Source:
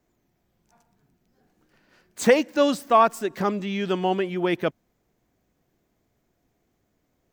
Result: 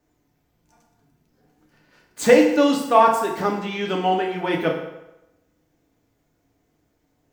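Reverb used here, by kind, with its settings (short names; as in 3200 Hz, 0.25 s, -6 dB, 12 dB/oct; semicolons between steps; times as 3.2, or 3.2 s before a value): FDN reverb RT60 0.93 s, low-frequency decay 0.85×, high-frequency decay 0.8×, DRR -0.5 dB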